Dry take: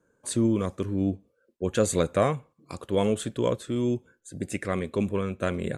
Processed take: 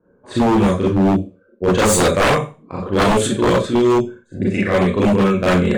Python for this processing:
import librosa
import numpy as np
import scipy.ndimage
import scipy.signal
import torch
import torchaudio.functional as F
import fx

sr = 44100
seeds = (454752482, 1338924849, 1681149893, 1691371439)

p1 = fx.env_lowpass(x, sr, base_hz=1000.0, full_db=-20.5)
p2 = p1 + fx.room_early_taps(p1, sr, ms=(11, 39), db=(-15.0, -17.0), dry=0)
p3 = fx.rev_schroeder(p2, sr, rt60_s=0.31, comb_ms=30, drr_db=-6.5)
p4 = 10.0 ** (-15.0 / 20.0) * (np.abs((p3 / 10.0 ** (-15.0 / 20.0) + 3.0) % 4.0 - 2.0) - 1.0)
y = p4 * 10.0 ** (6.5 / 20.0)